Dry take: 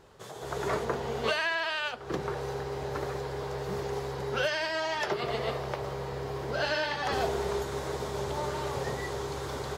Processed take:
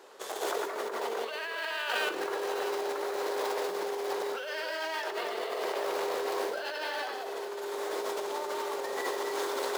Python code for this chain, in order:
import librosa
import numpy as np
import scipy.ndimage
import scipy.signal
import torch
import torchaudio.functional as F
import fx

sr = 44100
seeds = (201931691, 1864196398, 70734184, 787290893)

p1 = fx.high_shelf(x, sr, hz=9000.0, db=4.0)
p2 = p1 + fx.echo_multitap(p1, sr, ms=(92, 220, 253, 255, 808), db=(-9.0, -18.0, -16.5, -8.5, -17.0), dry=0)
p3 = fx.dynamic_eq(p2, sr, hz=6700.0, q=1.1, threshold_db=-50.0, ratio=4.0, max_db=-3)
p4 = fx.quant_dither(p3, sr, seeds[0], bits=6, dither='none')
p5 = p3 + F.gain(torch.from_numpy(p4), -7.0).numpy()
p6 = fx.over_compress(p5, sr, threshold_db=-33.0, ratio=-1.0)
y = scipy.signal.sosfilt(scipy.signal.butter(4, 330.0, 'highpass', fs=sr, output='sos'), p6)